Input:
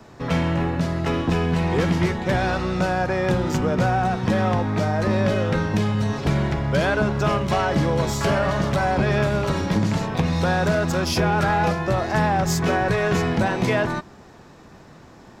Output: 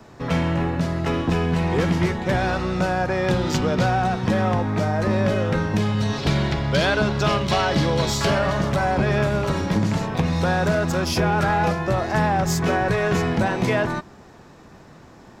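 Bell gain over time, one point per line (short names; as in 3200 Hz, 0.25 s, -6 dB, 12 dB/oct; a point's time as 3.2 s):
bell 4000 Hz 1.2 oct
3.07 s -0.5 dB
3.57 s +9.5 dB
4.45 s -1.5 dB
5.71 s -1.5 dB
6.16 s +9 dB
8.12 s +9 dB
8.66 s -1 dB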